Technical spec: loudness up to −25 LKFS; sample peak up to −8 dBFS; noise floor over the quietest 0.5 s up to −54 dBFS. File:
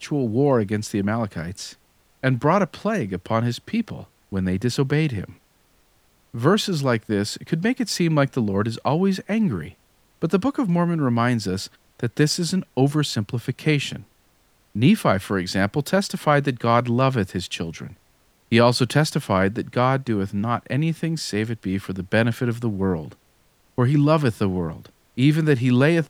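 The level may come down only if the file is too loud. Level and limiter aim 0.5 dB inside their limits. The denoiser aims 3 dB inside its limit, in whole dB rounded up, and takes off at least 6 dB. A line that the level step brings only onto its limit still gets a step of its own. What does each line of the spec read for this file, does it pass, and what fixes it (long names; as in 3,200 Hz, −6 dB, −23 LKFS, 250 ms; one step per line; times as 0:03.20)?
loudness −22.0 LKFS: out of spec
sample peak −4.0 dBFS: out of spec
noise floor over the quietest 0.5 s −60 dBFS: in spec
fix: level −3.5 dB
brickwall limiter −8.5 dBFS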